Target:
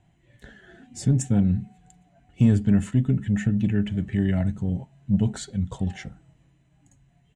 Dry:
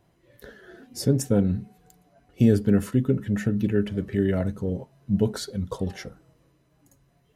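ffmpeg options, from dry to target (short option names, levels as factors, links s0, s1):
-filter_complex "[0:a]firequalizer=gain_entry='entry(170,0);entry(480,-16);entry(750,-2);entry(1100,-12);entry(1800,-3);entry(3100,-2);entry(5000,-14);entry(7500,1);entry(12000,-27)':delay=0.05:min_phase=1,asplit=2[s0][s1];[s1]asoftclip=type=tanh:threshold=0.106,volume=0.631[s2];[s0][s2]amix=inputs=2:normalize=0"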